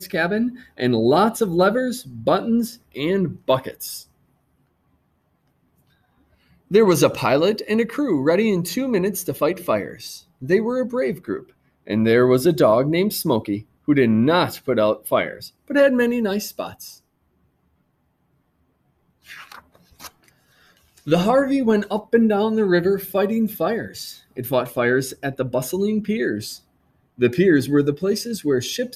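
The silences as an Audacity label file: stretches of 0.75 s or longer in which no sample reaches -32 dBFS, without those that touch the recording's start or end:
4.000000	6.710000	silence
16.910000	19.300000	silence
20.070000	21.070000	silence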